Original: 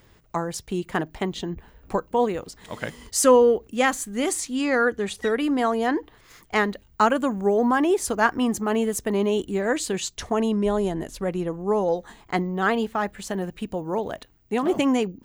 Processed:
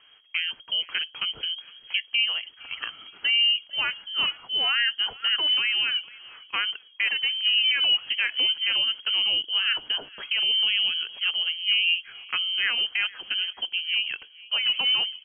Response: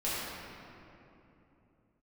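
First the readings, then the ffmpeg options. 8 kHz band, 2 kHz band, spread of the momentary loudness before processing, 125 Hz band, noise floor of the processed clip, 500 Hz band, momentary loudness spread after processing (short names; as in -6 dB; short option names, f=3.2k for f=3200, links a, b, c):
under -40 dB, +3.5 dB, 10 LU, under -25 dB, -54 dBFS, -28.0 dB, 10 LU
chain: -af "alimiter=limit=-15dB:level=0:latency=1:release=116,aecho=1:1:461|922:0.0794|0.0254,lowpass=f=2.8k:t=q:w=0.5098,lowpass=f=2.8k:t=q:w=0.6013,lowpass=f=2.8k:t=q:w=0.9,lowpass=f=2.8k:t=q:w=2.563,afreqshift=-3300"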